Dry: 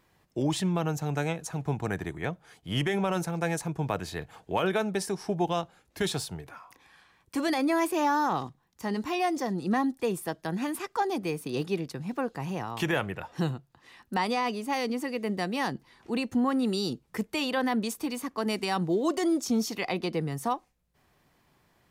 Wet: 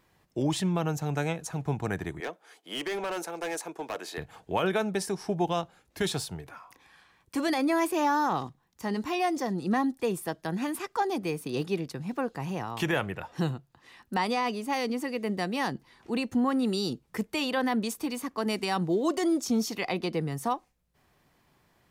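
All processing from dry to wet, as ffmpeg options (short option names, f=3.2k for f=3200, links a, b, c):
-filter_complex "[0:a]asettb=1/sr,asplit=3[a][b][c];[a]atrim=end=2.204[d];[b]atrim=start=2.2:end=4.18,asetpts=PTS-STARTPTS,afade=t=in:d=0.004:c=qsin,afade=t=out:st=1.976:d=0.004:c=qsin,highpass=f=310:w=0.5412,highpass=f=310:w=1.3066,asoftclip=type=hard:threshold=-28.5dB[e];[c]atrim=start=4.176[f];[d][e]acrossfade=d=0.004:c1=hsin:c2=qsin[g];[g][f]acrossfade=d=0.004:c1=qsin:c2=hsin"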